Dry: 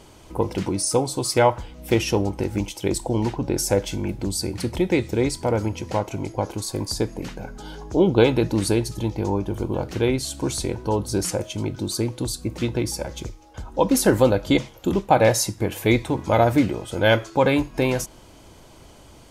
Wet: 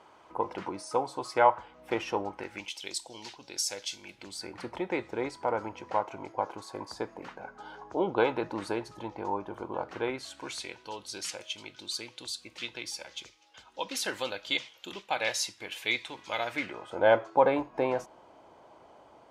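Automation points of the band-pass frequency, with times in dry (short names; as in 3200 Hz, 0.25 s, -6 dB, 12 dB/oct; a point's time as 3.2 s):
band-pass, Q 1.4
2.26 s 1100 Hz
2.91 s 4400 Hz
4.01 s 4400 Hz
4.58 s 1100 Hz
10.04 s 1100 Hz
10.8 s 3100 Hz
16.45 s 3100 Hz
17.02 s 790 Hz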